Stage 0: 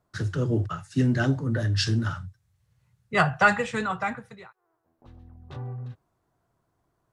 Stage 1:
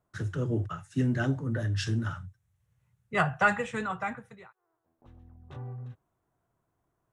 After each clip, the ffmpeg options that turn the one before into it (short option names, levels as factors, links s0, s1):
-af "equalizer=f=4600:w=2.9:g=-9.5,volume=0.596"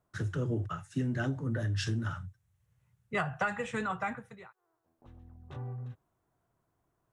-af "acompressor=threshold=0.0398:ratio=6"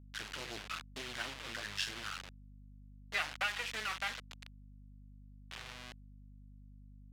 -af "acrusher=bits=4:dc=4:mix=0:aa=0.000001,bandpass=f=3100:t=q:w=1:csg=0,aeval=exprs='val(0)+0.000891*(sin(2*PI*50*n/s)+sin(2*PI*2*50*n/s)/2+sin(2*PI*3*50*n/s)/3+sin(2*PI*4*50*n/s)/4+sin(2*PI*5*50*n/s)/5)':c=same,volume=2.24"